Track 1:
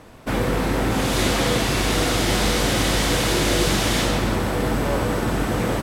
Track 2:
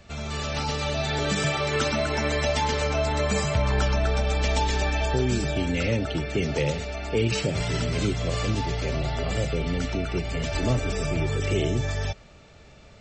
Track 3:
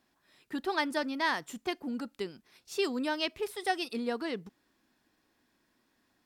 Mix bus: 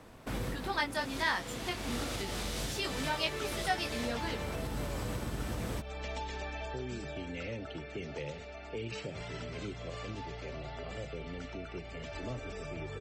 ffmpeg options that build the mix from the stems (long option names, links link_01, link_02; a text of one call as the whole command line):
ffmpeg -i stem1.wav -i stem2.wav -i stem3.wav -filter_complex "[0:a]volume=-8.5dB[link_01];[1:a]bass=frequency=250:gain=-6,treble=frequency=4000:gain=-8,adelay=1600,volume=-11.5dB[link_02];[2:a]equalizer=frequency=330:width=0.87:gain=-9,acontrast=63,flanger=delay=18.5:depth=3.7:speed=0.33,volume=-3.5dB,asplit=2[link_03][link_04];[link_04]apad=whole_len=256663[link_05];[link_01][link_05]sidechaincompress=threshold=-44dB:ratio=5:attack=7.6:release=539[link_06];[link_06][link_02]amix=inputs=2:normalize=0,acrossover=split=180|3000[link_07][link_08][link_09];[link_08]acompressor=threshold=-38dB:ratio=2.5[link_10];[link_07][link_10][link_09]amix=inputs=3:normalize=0,alimiter=level_in=2.5dB:limit=-24dB:level=0:latency=1:release=295,volume=-2.5dB,volume=0dB[link_11];[link_03][link_11]amix=inputs=2:normalize=0" out.wav